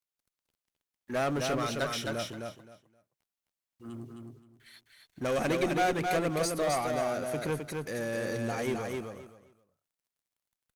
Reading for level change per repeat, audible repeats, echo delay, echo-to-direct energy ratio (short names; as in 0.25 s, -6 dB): -14.0 dB, 3, 0.262 s, -4.0 dB